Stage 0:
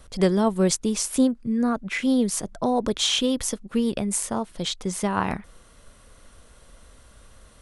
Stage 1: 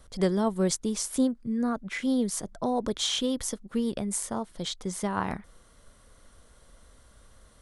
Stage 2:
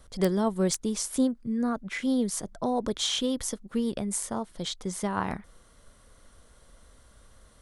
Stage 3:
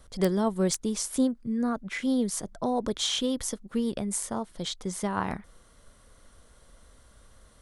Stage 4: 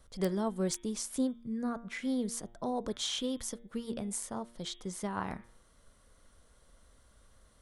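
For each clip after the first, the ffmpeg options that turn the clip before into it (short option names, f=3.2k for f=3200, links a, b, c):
-af "equalizer=f=2.6k:w=5.6:g=-6.5,volume=-5dB"
-af "aeval=exprs='(mod(4.73*val(0)+1,2)-1)/4.73':c=same"
-af anull
-af "bandreject=f=116.9:t=h:w=4,bandreject=f=233.8:t=h:w=4,bandreject=f=350.7:t=h:w=4,bandreject=f=467.6:t=h:w=4,bandreject=f=584.5:t=h:w=4,bandreject=f=701.4:t=h:w=4,bandreject=f=818.3:t=h:w=4,bandreject=f=935.2:t=h:w=4,bandreject=f=1.0521k:t=h:w=4,bandreject=f=1.169k:t=h:w=4,bandreject=f=1.2859k:t=h:w=4,bandreject=f=1.4028k:t=h:w=4,bandreject=f=1.5197k:t=h:w=4,bandreject=f=1.6366k:t=h:w=4,bandreject=f=1.7535k:t=h:w=4,bandreject=f=1.8704k:t=h:w=4,bandreject=f=1.9873k:t=h:w=4,bandreject=f=2.1042k:t=h:w=4,bandreject=f=2.2211k:t=h:w=4,bandreject=f=2.338k:t=h:w=4,bandreject=f=2.4549k:t=h:w=4,bandreject=f=2.5718k:t=h:w=4,bandreject=f=2.6887k:t=h:w=4,bandreject=f=2.8056k:t=h:w=4,bandreject=f=2.9225k:t=h:w=4,bandreject=f=3.0394k:t=h:w=4,bandreject=f=3.1563k:t=h:w=4,bandreject=f=3.2732k:t=h:w=4,bandreject=f=3.3901k:t=h:w=4,bandreject=f=3.507k:t=h:w=4,bandreject=f=3.6239k:t=h:w=4,bandreject=f=3.7408k:t=h:w=4,volume=-6.5dB"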